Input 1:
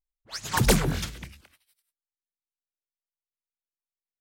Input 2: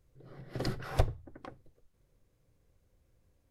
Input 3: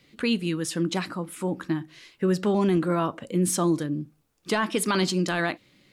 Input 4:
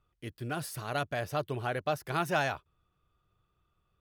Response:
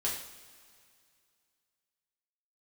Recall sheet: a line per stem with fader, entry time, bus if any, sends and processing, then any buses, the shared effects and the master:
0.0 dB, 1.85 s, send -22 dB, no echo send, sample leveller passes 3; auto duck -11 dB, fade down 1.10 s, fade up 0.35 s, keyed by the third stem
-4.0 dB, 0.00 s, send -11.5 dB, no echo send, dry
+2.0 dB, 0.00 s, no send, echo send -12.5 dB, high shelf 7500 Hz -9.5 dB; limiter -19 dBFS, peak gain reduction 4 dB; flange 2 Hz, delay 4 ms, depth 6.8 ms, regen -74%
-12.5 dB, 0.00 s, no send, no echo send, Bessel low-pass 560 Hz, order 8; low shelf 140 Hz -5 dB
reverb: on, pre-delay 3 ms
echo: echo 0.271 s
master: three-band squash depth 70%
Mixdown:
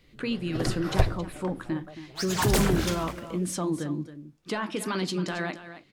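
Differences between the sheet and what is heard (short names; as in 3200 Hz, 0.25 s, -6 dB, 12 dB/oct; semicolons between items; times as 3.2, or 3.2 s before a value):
stem 2 -4.0 dB -> +3.0 dB; master: missing three-band squash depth 70%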